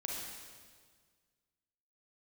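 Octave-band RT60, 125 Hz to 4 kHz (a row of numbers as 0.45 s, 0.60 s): 2.1 s, 1.9 s, 1.8 s, 1.6 s, 1.6 s, 1.6 s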